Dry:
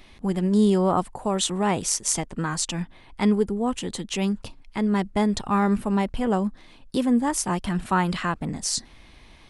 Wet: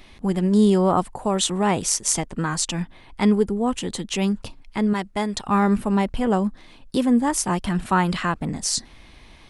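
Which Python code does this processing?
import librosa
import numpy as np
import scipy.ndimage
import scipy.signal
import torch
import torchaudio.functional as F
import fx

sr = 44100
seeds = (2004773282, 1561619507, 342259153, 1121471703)

y = fx.low_shelf(x, sr, hz=500.0, db=-8.5, at=(4.93, 5.48))
y = y * 10.0 ** (2.5 / 20.0)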